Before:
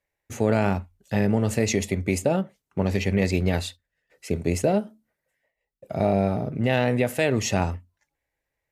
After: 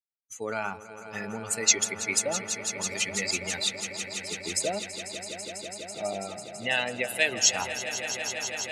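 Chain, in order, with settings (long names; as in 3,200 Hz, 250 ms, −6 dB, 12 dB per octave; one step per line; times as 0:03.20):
spectral dynamics exaggerated over time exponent 2
meter weighting curve ITU-R 468
on a send: echo that builds up and dies away 165 ms, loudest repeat 5, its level −13 dB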